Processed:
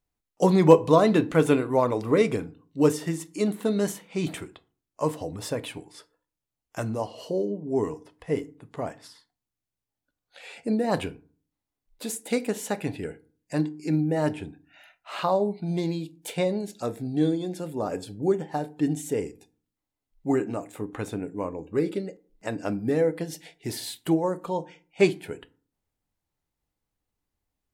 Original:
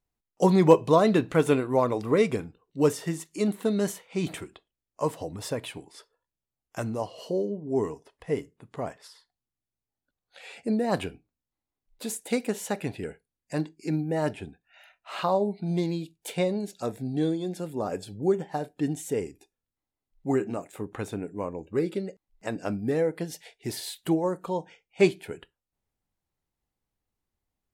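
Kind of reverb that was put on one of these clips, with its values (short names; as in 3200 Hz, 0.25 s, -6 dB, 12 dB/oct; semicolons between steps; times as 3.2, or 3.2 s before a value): FDN reverb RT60 0.42 s, low-frequency decay 1.4×, high-frequency decay 0.55×, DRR 14 dB; gain +1 dB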